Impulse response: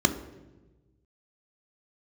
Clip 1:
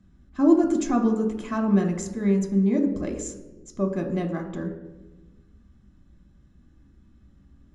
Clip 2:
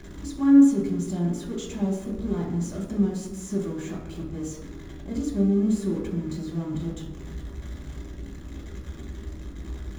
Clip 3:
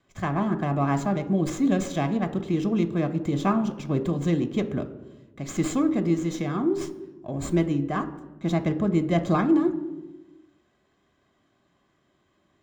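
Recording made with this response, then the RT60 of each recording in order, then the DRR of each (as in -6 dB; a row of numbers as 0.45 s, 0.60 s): 3; 1.2 s, 1.2 s, 1.2 s; 1.5 dB, -4.5 dB, 7.0 dB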